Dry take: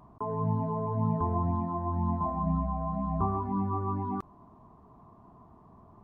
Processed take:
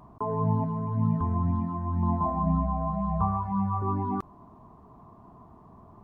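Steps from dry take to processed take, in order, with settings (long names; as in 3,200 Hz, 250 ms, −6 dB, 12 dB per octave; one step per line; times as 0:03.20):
0:00.64–0:02.03: flat-topped bell 570 Hz −10 dB
0:02.90–0:03.82: elliptic band-stop filter 210–450 Hz
level +3.5 dB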